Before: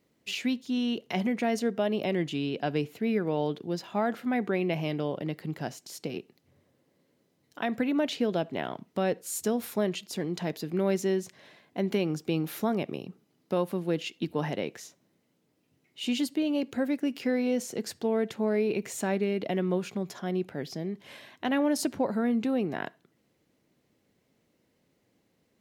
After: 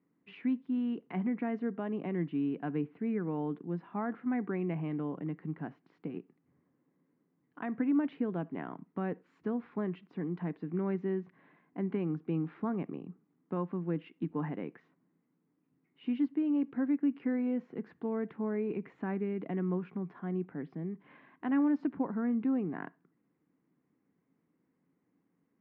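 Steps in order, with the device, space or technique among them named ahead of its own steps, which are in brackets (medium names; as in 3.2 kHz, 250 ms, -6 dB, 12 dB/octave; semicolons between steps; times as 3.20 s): bass cabinet (cabinet simulation 86–2000 Hz, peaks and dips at 100 Hz -7 dB, 170 Hz +7 dB, 280 Hz +8 dB, 590 Hz -9 dB, 1.1 kHz +5 dB); trim -7.5 dB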